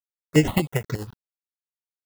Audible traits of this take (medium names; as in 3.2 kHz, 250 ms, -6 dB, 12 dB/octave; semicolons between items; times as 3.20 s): a quantiser's noise floor 8-bit, dither none; tremolo triangle 11 Hz, depth 75%; aliases and images of a low sample rate 2.4 kHz, jitter 0%; notches that jump at a steady rate 8.4 Hz 610–5700 Hz